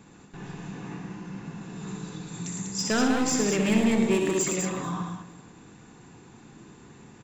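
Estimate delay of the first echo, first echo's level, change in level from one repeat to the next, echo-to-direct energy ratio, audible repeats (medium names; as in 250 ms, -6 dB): 64 ms, -7.5 dB, no regular repeats, -1.0 dB, 11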